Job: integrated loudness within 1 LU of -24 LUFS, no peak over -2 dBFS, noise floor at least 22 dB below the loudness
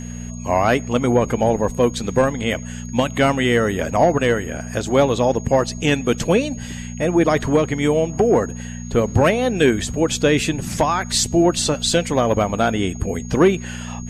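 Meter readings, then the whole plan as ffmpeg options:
hum 60 Hz; harmonics up to 240 Hz; hum level -28 dBFS; steady tone 6600 Hz; tone level -39 dBFS; loudness -19.0 LUFS; peak -5.0 dBFS; loudness target -24.0 LUFS
-> -af "bandreject=f=60:t=h:w=4,bandreject=f=120:t=h:w=4,bandreject=f=180:t=h:w=4,bandreject=f=240:t=h:w=4"
-af "bandreject=f=6.6k:w=30"
-af "volume=-5dB"

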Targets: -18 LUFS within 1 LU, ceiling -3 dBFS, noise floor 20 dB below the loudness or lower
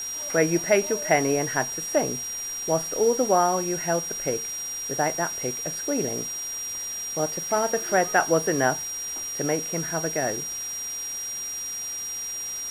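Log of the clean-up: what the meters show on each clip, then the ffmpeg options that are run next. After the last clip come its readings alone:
steady tone 5700 Hz; tone level -30 dBFS; noise floor -33 dBFS; noise floor target -46 dBFS; loudness -25.5 LUFS; peak -7.0 dBFS; loudness target -18.0 LUFS
-> -af "bandreject=f=5.7k:w=30"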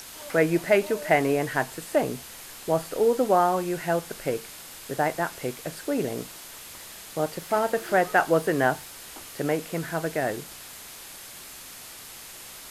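steady tone none; noise floor -43 dBFS; noise floor target -46 dBFS
-> -af "afftdn=nr=6:nf=-43"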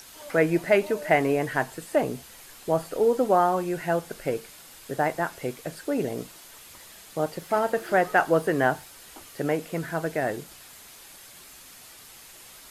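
noise floor -48 dBFS; loudness -26.0 LUFS; peak -7.5 dBFS; loudness target -18.0 LUFS
-> -af "volume=8dB,alimiter=limit=-3dB:level=0:latency=1"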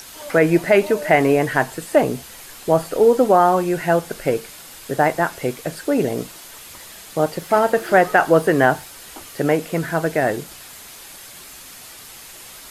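loudness -18.5 LUFS; peak -3.0 dBFS; noise floor -40 dBFS

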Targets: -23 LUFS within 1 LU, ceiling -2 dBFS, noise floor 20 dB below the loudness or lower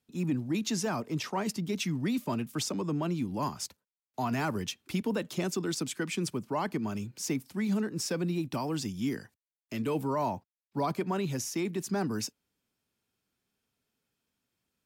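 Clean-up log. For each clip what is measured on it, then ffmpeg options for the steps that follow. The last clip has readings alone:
loudness -33.0 LUFS; peak -20.0 dBFS; loudness target -23.0 LUFS
-> -af "volume=10dB"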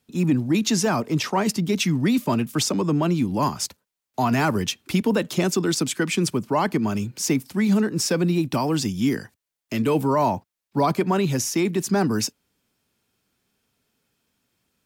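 loudness -23.0 LUFS; peak -10.0 dBFS; noise floor -86 dBFS

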